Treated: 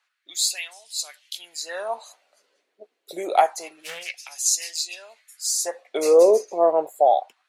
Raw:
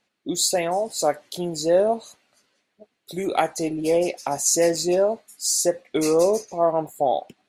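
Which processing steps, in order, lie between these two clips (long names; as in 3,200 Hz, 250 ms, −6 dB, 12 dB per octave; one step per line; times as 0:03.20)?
auto-filter high-pass sine 0.27 Hz 400–3,300 Hz
0:03.82–0:04.27: highs frequency-modulated by the lows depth 0.18 ms
level −2 dB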